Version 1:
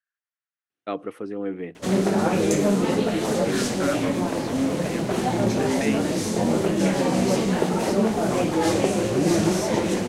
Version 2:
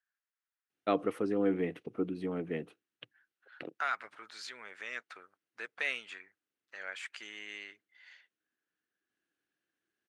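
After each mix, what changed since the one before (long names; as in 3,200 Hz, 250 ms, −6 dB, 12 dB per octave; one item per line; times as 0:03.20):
background: muted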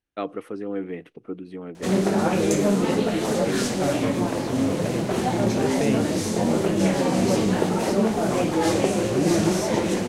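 first voice: entry −0.70 s
second voice: remove high-pass with resonance 1,500 Hz, resonance Q 2.8
background: unmuted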